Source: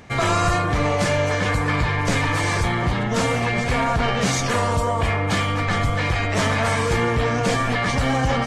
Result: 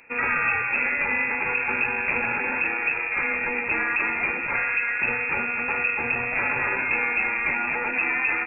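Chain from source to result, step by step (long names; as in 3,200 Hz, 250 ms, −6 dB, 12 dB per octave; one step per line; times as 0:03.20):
harmonic generator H 7 −27 dB, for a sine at −8 dBFS
voice inversion scrambler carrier 2,600 Hz
level −4 dB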